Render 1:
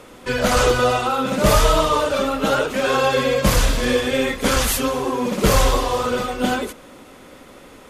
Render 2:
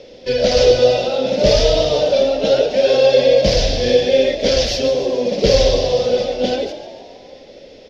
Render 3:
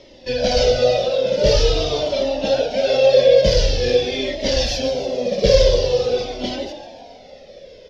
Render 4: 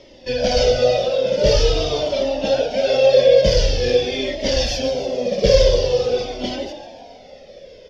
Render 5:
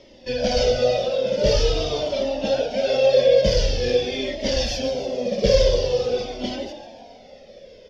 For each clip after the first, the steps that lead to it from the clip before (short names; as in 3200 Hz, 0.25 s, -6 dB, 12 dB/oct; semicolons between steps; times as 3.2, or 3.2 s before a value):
EQ curve 310 Hz 0 dB, 540 Hz +11 dB, 1200 Hz -18 dB, 1700 Hz -4 dB, 5400 Hz +11 dB, 8500 Hz -26 dB; on a send: frequency-shifting echo 0.144 s, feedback 58%, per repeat +48 Hz, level -13 dB; on the sum: gain -2 dB
cascading flanger falling 0.46 Hz; gain +2 dB
notch 4000 Hz, Q 12
bell 220 Hz +5.5 dB 0.24 oct; gain -3.5 dB